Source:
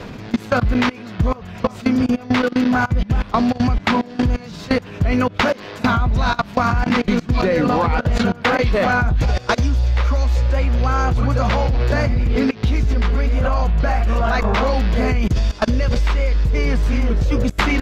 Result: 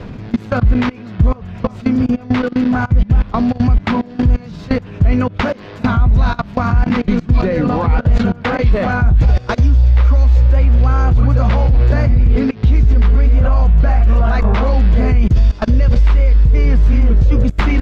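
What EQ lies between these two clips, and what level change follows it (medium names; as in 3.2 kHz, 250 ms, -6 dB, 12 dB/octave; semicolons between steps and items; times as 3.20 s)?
low-pass 3.7 kHz 6 dB/octave; bass shelf 220 Hz +10 dB; -2.0 dB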